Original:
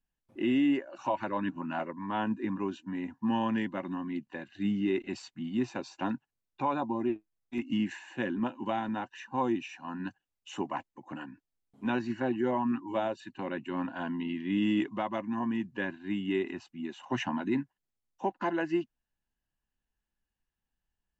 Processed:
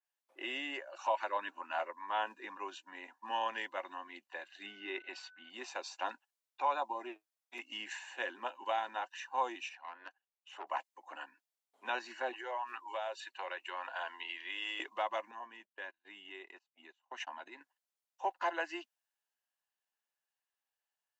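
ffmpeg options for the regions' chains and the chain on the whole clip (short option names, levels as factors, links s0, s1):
-filter_complex "[0:a]asettb=1/sr,asplit=3[s0][s1][s2];[s0]atrim=end=4.664[s3];[s1]atrim=start=4.66:end=5.5,asetpts=PTS-STARTPTS,afade=t=in:d=0.004:c=qsin,afade=t=out:st=0.836:d=0.004:c=qsin,lowpass=3900,aeval=exprs='val(0)+0.00141*sin(2*PI*1500*n/s)':c=same[s4];[s2]atrim=start=5.496[s5];[s3][s4]acrossfade=d=0.004:c1=hsin:c2=qsin[s6];[s6][s5]acrossfade=d=0.004:c1=qsin:c2=hsin,asettb=1/sr,asplit=3[s7][s8][s9];[s7]atrim=end=9.694[s10];[s8]atrim=start=9.69:end=10.67,asetpts=PTS-STARTPTS,afade=t=in:d=0.004:c=qsin,afade=t=out:st=0.976:d=0.004:c=qsin,acrossover=split=250 3200:gain=0.0794 1 0.224[s11][s12][s13];[s11][s12][s13]amix=inputs=3:normalize=0,aeval=exprs='(tanh(35.5*val(0)+0.7)-tanh(0.7))/35.5':c=same[s14];[s9]atrim=start=10.666[s15];[s10][s14]acrossfade=d=0.004:c1=hsin:c2=qsin[s16];[s16][s15]acrossfade=d=0.004:c1=qsin:c2=hsin,asettb=1/sr,asplit=3[s17][s18][s19];[s17]atrim=end=12.334[s20];[s18]atrim=start=12.33:end=14.8,asetpts=PTS-STARTPTS,afade=t=in:d=0.004:c=qsin,afade=t=out:st=2.466:d=0.004:c=qsin,highpass=f=370:w=0.5412,highpass=f=370:w=1.3066,equalizer=f=2200:t=o:w=2.5:g=3.5,acompressor=threshold=0.02:ratio=3:attack=3.2:release=140:knee=1:detection=peak[s21];[s19]atrim=start=14.796[s22];[s20][s21]acrossfade=d=0.004:c1=hsin:c2=qsin[s23];[s23][s22]acrossfade=d=0.004:c1=qsin:c2=hsin,asettb=1/sr,asplit=3[s24][s25][s26];[s24]atrim=end=15.314[s27];[s25]atrim=start=15.31:end=17.61,asetpts=PTS-STARTPTS,afade=t=in:d=0.004:c=qsin,afade=t=out:st=2.296:d=0.004:c=qsin,acompressor=threshold=0.0112:ratio=2.5:attack=3.2:release=140:knee=1:detection=peak,agate=range=0.0282:threshold=0.00708:ratio=16:release=100:detection=peak[s28];[s26]atrim=start=17.606[s29];[s27][s28]acrossfade=d=0.004:c1=hsin:c2=qsin[s30];[s30][s29]acrossfade=d=0.004:c1=qsin:c2=hsin,highpass=f=540:w=0.5412,highpass=f=540:w=1.3066,adynamicequalizer=threshold=0.00355:dfrequency=3000:dqfactor=0.7:tfrequency=3000:tqfactor=0.7:attack=5:release=100:ratio=0.375:range=2.5:mode=boostabove:tftype=highshelf,volume=0.891"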